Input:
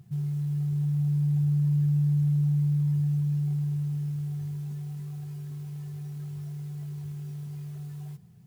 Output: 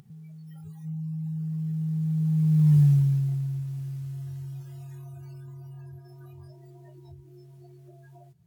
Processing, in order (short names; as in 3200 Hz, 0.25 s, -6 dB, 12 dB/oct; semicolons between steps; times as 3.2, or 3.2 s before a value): Doppler pass-by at 2.8, 26 m/s, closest 5.6 m; spectral noise reduction 22 dB; upward compressor, threshold -37 dBFS; gain +8.5 dB